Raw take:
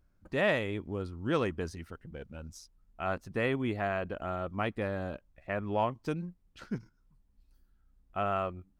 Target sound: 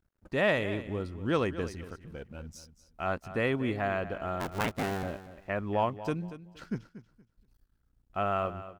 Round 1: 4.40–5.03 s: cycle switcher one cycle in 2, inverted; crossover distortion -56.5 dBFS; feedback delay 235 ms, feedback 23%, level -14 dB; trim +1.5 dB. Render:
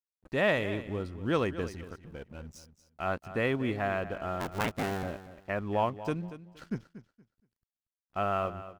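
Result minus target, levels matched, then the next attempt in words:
crossover distortion: distortion +9 dB
4.40–5.03 s: cycle switcher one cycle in 2, inverted; crossover distortion -67 dBFS; feedback delay 235 ms, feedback 23%, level -14 dB; trim +1.5 dB

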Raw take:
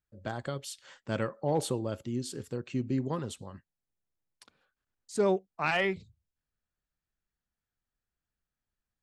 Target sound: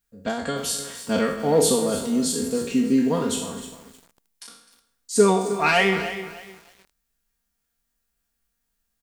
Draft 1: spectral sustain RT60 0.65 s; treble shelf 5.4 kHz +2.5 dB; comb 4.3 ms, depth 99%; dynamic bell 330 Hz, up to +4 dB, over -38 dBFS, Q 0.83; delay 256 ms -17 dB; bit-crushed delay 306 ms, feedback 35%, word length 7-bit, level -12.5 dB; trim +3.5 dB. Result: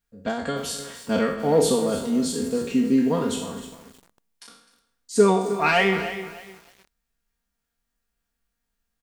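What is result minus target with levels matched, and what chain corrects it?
8 kHz band -5.0 dB
spectral sustain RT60 0.65 s; treble shelf 5.4 kHz +10.5 dB; comb 4.3 ms, depth 99%; dynamic bell 330 Hz, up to +4 dB, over -38 dBFS, Q 0.83; delay 256 ms -17 dB; bit-crushed delay 306 ms, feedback 35%, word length 7-bit, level -12.5 dB; trim +3.5 dB

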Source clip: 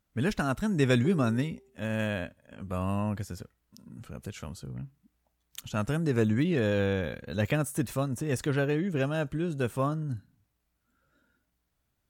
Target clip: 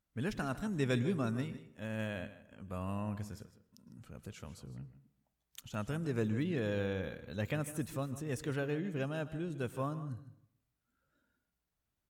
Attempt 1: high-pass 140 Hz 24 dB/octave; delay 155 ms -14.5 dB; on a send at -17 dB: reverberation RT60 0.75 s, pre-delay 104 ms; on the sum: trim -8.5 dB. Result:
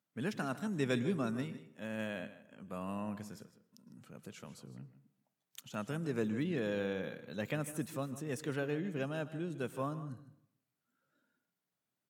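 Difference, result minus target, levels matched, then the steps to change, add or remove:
125 Hz band -3.0 dB
remove: high-pass 140 Hz 24 dB/octave

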